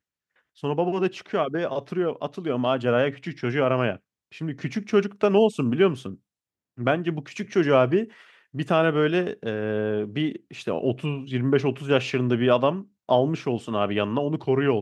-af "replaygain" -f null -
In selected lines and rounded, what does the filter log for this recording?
track_gain = +4.0 dB
track_peak = 0.349